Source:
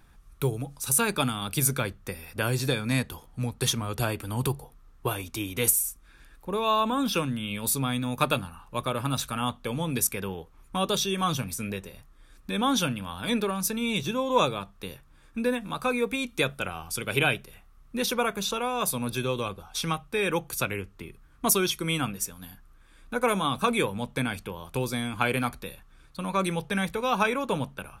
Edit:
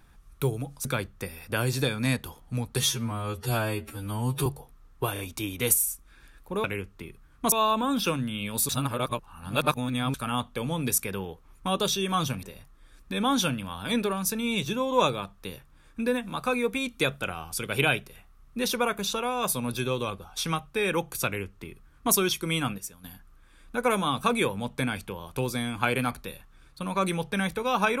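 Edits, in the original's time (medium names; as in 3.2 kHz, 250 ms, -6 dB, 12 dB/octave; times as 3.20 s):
0.85–1.71 s: delete
3.66–4.49 s: stretch 2×
5.16 s: stutter 0.03 s, 3 plays
7.78–9.23 s: reverse
11.52–11.81 s: delete
20.64–21.52 s: copy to 6.61 s
22.16–22.42 s: gain -7 dB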